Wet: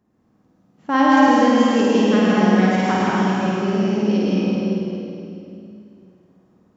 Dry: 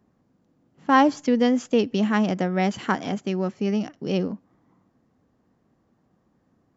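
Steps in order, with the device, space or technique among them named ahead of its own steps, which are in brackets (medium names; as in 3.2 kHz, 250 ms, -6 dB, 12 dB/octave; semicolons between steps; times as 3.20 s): tunnel (flutter echo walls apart 9 m, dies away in 1 s; reverberation RT60 2.7 s, pre-delay 107 ms, DRR -5.5 dB); trim -3 dB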